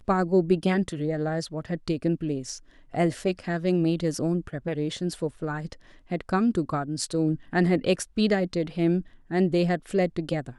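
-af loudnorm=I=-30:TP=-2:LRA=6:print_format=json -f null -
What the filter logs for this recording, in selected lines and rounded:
"input_i" : "-26.4",
"input_tp" : "-9.7",
"input_lra" : "2.8",
"input_thresh" : "-36.6",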